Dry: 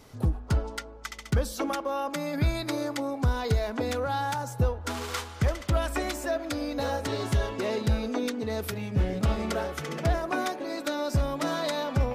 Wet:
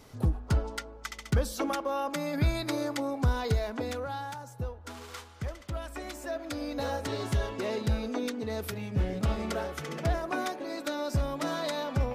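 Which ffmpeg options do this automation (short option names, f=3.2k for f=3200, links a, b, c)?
-af "volume=6.5dB,afade=t=out:st=3.32:d=1.08:silence=0.334965,afade=t=in:st=5.96:d=0.77:silence=0.421697"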